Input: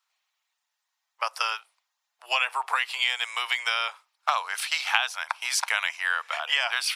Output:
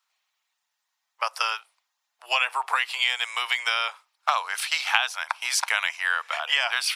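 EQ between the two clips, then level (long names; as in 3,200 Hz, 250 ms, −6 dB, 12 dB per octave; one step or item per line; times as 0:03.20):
high-pass filter 120 Hz
+1.5 dB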